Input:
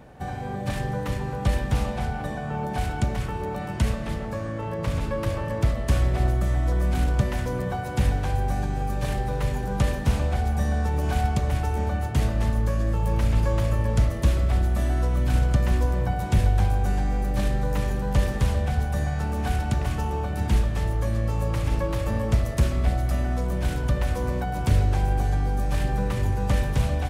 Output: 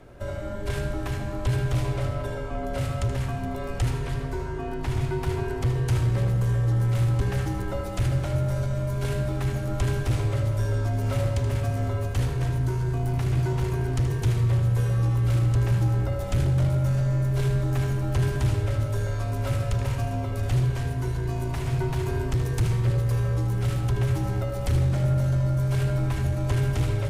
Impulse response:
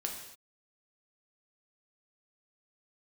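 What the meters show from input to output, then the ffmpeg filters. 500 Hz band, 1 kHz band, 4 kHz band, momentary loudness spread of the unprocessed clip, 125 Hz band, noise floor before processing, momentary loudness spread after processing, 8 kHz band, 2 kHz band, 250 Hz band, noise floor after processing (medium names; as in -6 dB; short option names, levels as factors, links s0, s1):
-1.0 dB, -6.0 dB, -1.5 dB, 6 LU, +2.0 dB, -31 dBFS, 7 LU, -1.0 dB, -2.5 dB, -2.0 dB, -31 dBFS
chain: -filter_complex "[0:a]afreqshift=-180,asoftclip=type=tanh:threshold=0.141,asplit=2[s0][s1];[1:a]atrim=start_sample=2205,adelay=78[s2];[s1][s2]afir=irnorm=-1:irlink=0,volume=0.355[s3];[s0][s3]amix=inputs=2:normalize=0"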